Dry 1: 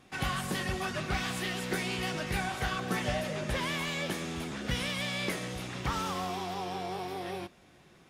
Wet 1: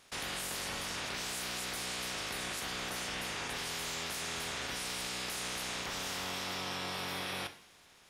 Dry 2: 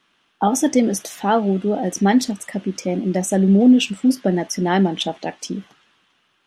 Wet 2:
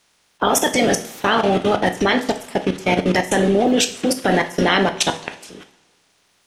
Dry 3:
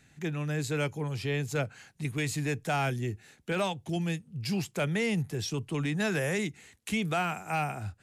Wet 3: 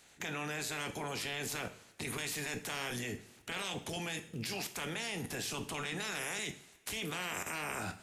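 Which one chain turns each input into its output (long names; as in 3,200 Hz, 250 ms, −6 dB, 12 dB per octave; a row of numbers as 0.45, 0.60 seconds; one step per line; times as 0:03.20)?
ceiling on every frequency bin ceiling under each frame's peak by 23 dB
output level in coarse steps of 23 dB
coupled-rooms reverb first 0.48 s, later 1.7 s, from −17 dB, DRR 7 dB
level +6.5 dB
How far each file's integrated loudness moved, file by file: −3.0, +0.5, −6.5 LU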